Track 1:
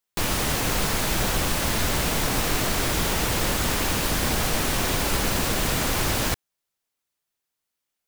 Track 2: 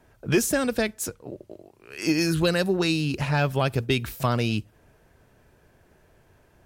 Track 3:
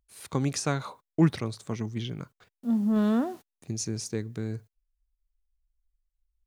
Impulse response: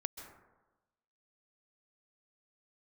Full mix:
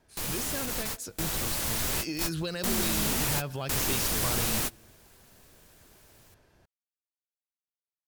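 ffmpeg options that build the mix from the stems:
-filter_complex "[0:a]aemphasis=mode=production:type=cd,volume=-12.5dB[link_01];[1:a]volume=-8.5dB,asplit=2[link_02][link_03];[link_03]volume=-19.5dB[link_04];[2:a]tremolo=f=0.73:d=0.97,volume=-3dB,asplit=2[link_05][link_06];[link_06]apad=whole_len=356171[link_07];[link_01][link_07]sidechaingate=range=-30dB:threshold=-58dB:ratio=16:detection=peak[link_08];[link_02][link_05]amix=inputs=2:normalize=0,equalizer=frequency=4600:width=1.3:gain=7,alimiter=level_in=7dB:limit=-24dB:level=0:latency=1:release=120,volume=-7dB,volume=0dB[link_09];[3:a]atrim=start_sample=2205[link_10];[link_04][link_10]afir=irnorm=-1:irlink=0[link_11];[link_08][link_09][link_11]amix=inputs=3:normalize=0,dynaudnorm=framelen=240:gausssize=13:maxgain=4.5dB"

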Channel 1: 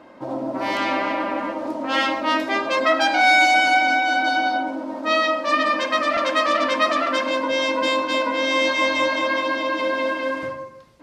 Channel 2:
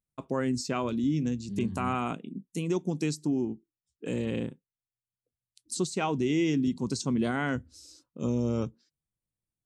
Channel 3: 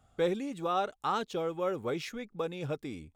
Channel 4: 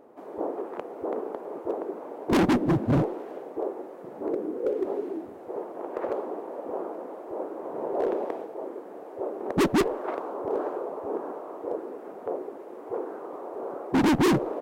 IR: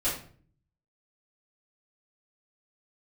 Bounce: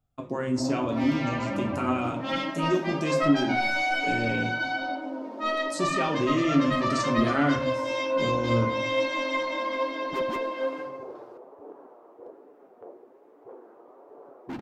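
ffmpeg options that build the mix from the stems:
-filter_complex "[0:a]highpass=160,asoftclip=type=tanh:threshold=-7dB,adelay=350,volume=-10dB,asplit=2[link_01][link_02];[link_02]volume=-5.5dB[link_03];[1:a]volume=2dB,asplit=3[link_04][link_05][link_06];[link_05]volume=-9dB[link_07];[2:a]lowshelf=frequency=390:gain=9.5,acompressor=threshold=-32dB:ratio=6,volume=-15dB[link_08];[3:a]adelay=550,volume=-9.5dB[link_09];[link_06]apad=whole_len=668636[link_10];[link_09][link_10]sidechaincompress=threshold=-43dB:ratio=8:attack=16:release=1180[link_11];[4:a]atrim=start_sample=2205[link_12];[link_03][link_07]amix=inputs=2:normalize=0[link_13];[link_13][link_12]afir=irnorm=-1:irlink=0[link_14];[link_01][link_04][link_08][link_11][link_14]amix=inputs=5:normalize=0,equalizer=frequency=9200:width_type=o:width=0.51:gain=-6.5,flanger=delay=6.8:depth=1.9:regen=54:speed=1.2:shape=sinusoidal"

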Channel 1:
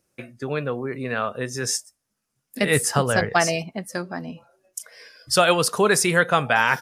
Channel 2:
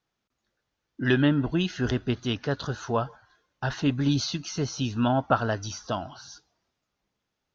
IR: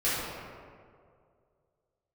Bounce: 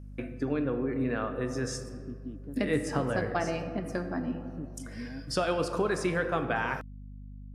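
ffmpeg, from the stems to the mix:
-filter_complex "[0:a]acrossover=split=9600[link_01][link_02];[link_02]acompressor=threshold=-47dB:ratio=4:attack=1:release=60[link_03];[link_01][link_03]amix=inputs=2:normalize=0,highshelf=frequency=2700:gain=-10.5,acompressor=threshold=-38dB:ratio=2,volume=0dB,asplit=3[link_04][link_05][link_06];[link_05]volume=-17.5dB[link_07];[1:a]acompressor=threshold=-31dB:ratio=3,bandpass=frequency=200:width_type=q:width=1.3:csg=0,volume=-10dB[link_08];[link_06]apad=whole_len=332871[link_09];[link_08][link_09]sidechaincompress=threshold=-47dB:ratio=8:attack=16:release=236[link_10];[2:a]atrim=start_sample=2205[link_11];[link_07][link_11]afir=irnorm=-1:irlink=0[link_12];[link_04][link_10][link_12]amix=inputs=3:normalize=0,equalizer=frequency=290:width_type=o:width=0.43:gain=11.5,aeval=exprs='val(0)+0.00708*(sin(2*PI*50*n/s)+sin(2*PI*2*50*n/s)/2+sin(2*PI*3*50*n/s)/3+sin(2*PI*4*50*n/s)/4+sin(2*PI*5*50*n/s)/5)':channel_layout=same"

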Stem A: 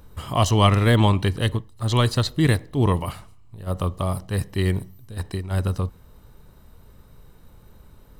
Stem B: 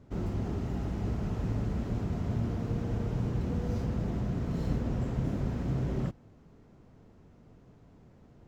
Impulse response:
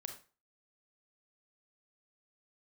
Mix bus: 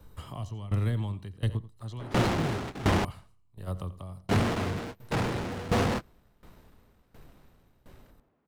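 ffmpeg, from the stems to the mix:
-filter_complex "[0:a]acrossover=split=95|200|940|7500[link_01][link_02][link_03][link_04][link_05];[link_01]acompressor=threshold=-28dB:ratio=4[link_06];[link_02]acompressor=threshold=-20dB:ratio=4[link_07];[link_03]acompressor=threshold=-33dB:ratio=4[link_08];[link_04]acompressor=threshold=-39dB:ratio=4[link_09];[link_05]acompressor=threshold=-54dB:ratio=4[link_10];[link_06][link_07][link_08][link_09][link_10]amix=inputs=5:normalize=0,volume=-3dB,asplit=3[link_11][link_12][link_13];[link_12]volume=-14.5dB[link_14];[1:a]adynamicsmooth=sensitivity=7:basefreq=2800,asplit=2[link_15][link_16];[link_16]highpass=frequency=720:poles=1,volume=49dB,asoftclip=type=tanh:threshold=-17.5dB[link_17];[link_15][link_17]amix=inputs=2:normalize=0,lowpass=frequency=7300:poles=1,volume=-6dB,adelay=2000,volume=0.5dB,asplit=3[link_18][link_19][link_20];[link_18]atrim=end=3.05,asetpts=PTS-STARTPTS,afade=type=out:start_time=3.046:duration=0.004:curve=hsin[link_21];[link_19]atrim=start=3.05:end=4.29,asetpts=PTS-STARTPTS,volume=0[link_22];[link_20]atrim=start=4.29,asetpts=PTS-STARTPTS,afade=type=in:duration=0.004:curve=hsin[link_23];[link_21][link_22][link_23]concat=n=3:v=0:a=1[link_24];[link_13]apad=whole_len=462142[link_25];[link_24][link_25]sidechaingate=range=-33dB:threshold=-40dB:ratio=16:detection=peak[link_26];[link_14]aecho=0:1:87:1[link_27];[link_11][link_26][link_27]amix=inputs=3:normalize=0,aeval=exprs='val(0)*pow(10,-18*if(lt(mod(1.4*n/s,1),2*abs(1.4)/1000),1-mod(1.4*n/s,1)/(2*abs(1.4)/1000),(mod(1.4*n/s,1)-2*abs(1.4)/1000)/(1-2*abs(1.4)/1000))/20)':channel_layout=same"

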